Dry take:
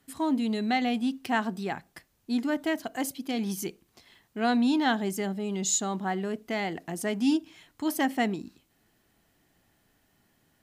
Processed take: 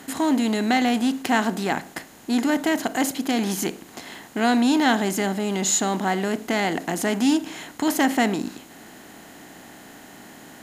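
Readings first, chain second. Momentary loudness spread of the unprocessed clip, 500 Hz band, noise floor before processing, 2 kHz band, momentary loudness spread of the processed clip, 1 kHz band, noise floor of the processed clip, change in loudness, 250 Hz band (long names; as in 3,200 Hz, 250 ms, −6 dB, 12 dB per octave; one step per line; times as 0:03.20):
8 LU, +6.5 dB, −70 dBFS, +7.5 dB, 12 LU, +6.5 dB, −46 dBFS, +6.5 dB, +6.0 dB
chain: compressor on every frequency bin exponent 0.6
level +3.5 dB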